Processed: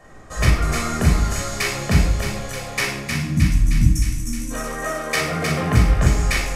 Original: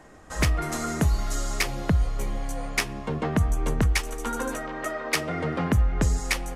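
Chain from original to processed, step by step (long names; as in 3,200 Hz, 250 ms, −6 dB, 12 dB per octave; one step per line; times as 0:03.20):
gain on a spectral selection 0:03.04–0:04.51, 340–5,200 Hz −28 dB
feedback echo with a high-pass in the loop 310 ms, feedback 70%, high-pass 890 Hz, level −4 dB
convolution reverb RT60 0.75 s, pre-delay 17 ms, DRR −2.5 dB
level −2 dB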